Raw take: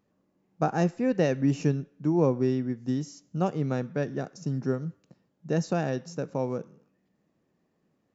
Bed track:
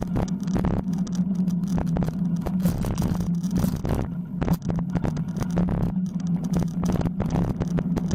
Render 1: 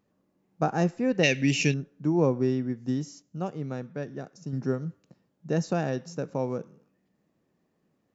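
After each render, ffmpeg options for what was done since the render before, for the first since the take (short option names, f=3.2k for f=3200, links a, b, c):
-filter_complex "[0:a]asettb=1/sr,asplit=3[a][b][c];[a]atrim=end=1.234[d];[b]atrim=start=1.23:end=1.74,asetpts=PTS-STARTPTS,afade=t=in:d=0.004:c=qsin,afade=t=out:st=0.506:d=0.004:c=qsin,highshelf=f=1.7k:t=q:w=3:g=11.5[e];[c]atrim=start=1.736[f];[d][e]acrossfade=d=0.004:c1=hsin:c2=qsin[g];[g][f]acrossfade=d=0.004:c1=qsin:c2=hsin,asplit=3[h][i][j];[h]atrim=end=3.222[k];[i]atrim=start=3.218:end=4.532,asetpts=PTS-STARTPTS,volume=-5.5dB[l];[j]atrim=start=4.528[m];[k][l]acrossfade=d=0.004:c1=hsin:c2=hsin[n];[n][m]acrossfade=d=0.004:c1=hsin:c2=hsin"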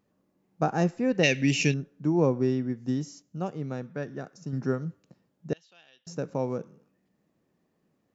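-filter_complex "[0:a]asettb=1/sr,asplit=3[a][b][c];[a]atrim=end=3.944[d];[b]atrim=start=3.94:end=4.83,asetpts=PTS-STARTPTS,afade=t=in:d=0.004:c=qsin,afade=t=out:st=0.886:d=0.004:c=qsin,equalizer=f=1.4k:t=o:w=0.98:g=4[e];[c]atrim=start=4.826[f];[d][e]acrossfade=d=0.004:c1=hsin:c2=qsin[g];[g][f]acrossfade=d=0.004:c1=qsin:c2=hsin,asettb=1/sr,asplit=3[h][i][j];[h]atrim=end=5.534[k];[i]atrim=start=5.53:end=6.07,asetpts=PTS-STARTPTS,afade=t=in:d=0.004:c=qsin,afade=t=out:st=0.536:d=0.004:c=qsin,bandpass=f=3.2k:t=q:w=8.9[l];[j]atrim=start=6.066[m];[k][l]acrossfade=d=0.004:c1=hsin:c2=qsin[n];[n][m]acrossfade=d=0.004:c1=qsin:c2=hsin"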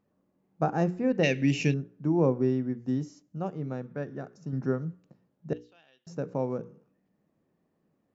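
-af "highshelf=f=2.5k:g=-10.5,bandreject=f=60:t=h:w=6,bandreject=f=120:t=h:w=6,bandreject=f=180:t=h:w=6,bandreject=f=240:t=h:w=6,bandreject=f=300:t=h:w=6,bandreject=f=360:t=h:w=6,bandreject=f=420:t=h:w=6,bandreject=f=480:t=h:w=6"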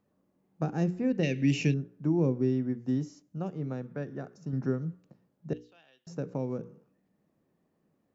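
-filter_complex "[0:a]acrossover=split=410|2000[a][b][c];[b]acompressor=threshold=-40dB:ratio=6[d];[c]alimiter=level_in=3.5dB:limit=-24dB:level=0:latency=1:release=285,volume=-3.5dB[e];[a][d][e]amix=inputs=3:normalize=0"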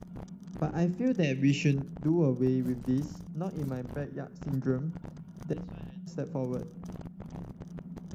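-filter_complex "[1:a]volume=-18.5dB[a];[0:a][a]amix=inputs=2:normalize=0"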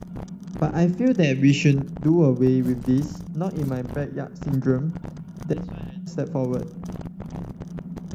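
-af "volume=8.5dB"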